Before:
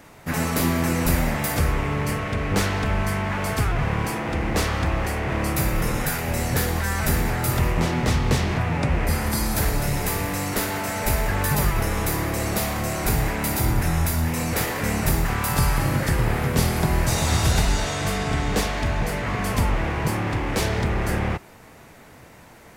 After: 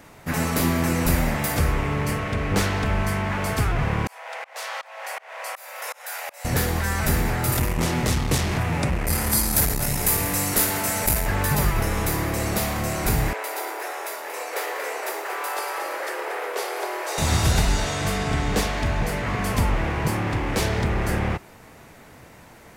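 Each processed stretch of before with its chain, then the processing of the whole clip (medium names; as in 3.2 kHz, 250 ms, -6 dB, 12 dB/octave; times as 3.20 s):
4.07–6.45 s: steep high-pass 550 Hz 48 dB/octave + tremolo saw up 2.7 Hz, depth 100% + band-stop 1.2 kHz, Q 23
7.52–11.26 s: peaking EQ 12 kHz +10.5 dB 1.6 oct + transformer saturation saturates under 270 Hz
13.33–17.18 s: steep high-pass 390 Hz 48 dB/octave + treble shelf 3 kHz -8 dB + bit-crushed delay 232 ms, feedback 35%, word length 9-bit, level -10 dB
whole clip: none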